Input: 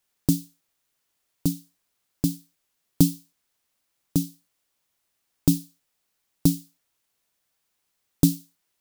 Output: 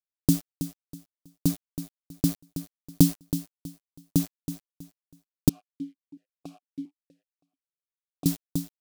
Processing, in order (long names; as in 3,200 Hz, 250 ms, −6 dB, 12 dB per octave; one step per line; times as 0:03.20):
centre clipping without the shift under −33.5 dBFS
repeating echo 323 ms, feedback 27%, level −11 dB
0:05.49–0:08.26: formant filter that steps through the vowels 4.4 Hz